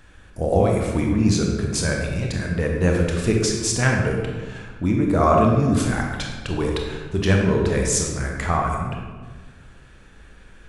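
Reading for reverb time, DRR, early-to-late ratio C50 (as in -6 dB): 1.4 s, 0.0 dB, 2.0 dB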